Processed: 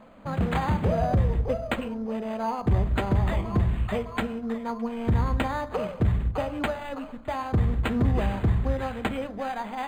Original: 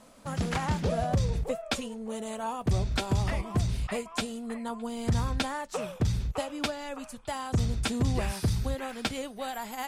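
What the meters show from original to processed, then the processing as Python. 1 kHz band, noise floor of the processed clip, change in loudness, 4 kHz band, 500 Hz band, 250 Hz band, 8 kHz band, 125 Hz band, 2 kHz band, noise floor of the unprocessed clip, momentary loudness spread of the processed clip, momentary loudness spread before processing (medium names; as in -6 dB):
+4.5 dB, -40 dBFS, +4.0 dB, -5.0 dB, +4.5 dB, +4.5 dB, under -10 dB, +4.0 dB, +2.5 dB, -48 dBFS, 7 LU, 8 LU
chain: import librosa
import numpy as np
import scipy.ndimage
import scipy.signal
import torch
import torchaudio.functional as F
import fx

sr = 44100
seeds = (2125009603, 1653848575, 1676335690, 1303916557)

p1 = fx.fold_sine(x, sr, drive_db=4, ceiling_db=-15.5)
p2 = x + F.gain(torch.from_numpy(p1), -7.5).numpy()
p3 = fx.brickwall_lowpass(p2, sr, high_hz=6700.0)
p4 = fx.rev_fdn(p3, sr, rt60_s=0.99, lf_ratio=1.5, hf_ratio=0.35, size_ms=89.0, drr_db=11.5)
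p5 = np.interp(np.arange(len(p4)), np.arange(len(p4))[::8], p4[::8])
y = F.gain(torch.from_numpy(p5), -1.5).numpy()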